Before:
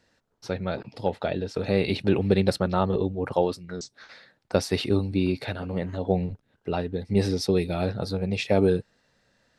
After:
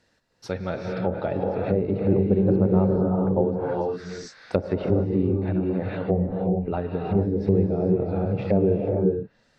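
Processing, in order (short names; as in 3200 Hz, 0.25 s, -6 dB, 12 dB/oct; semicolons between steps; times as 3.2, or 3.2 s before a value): non-linear reverb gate 0.48 s rising, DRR -0.5 dB; treble ducked by the level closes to 650 Hz, closed at -19 dBFS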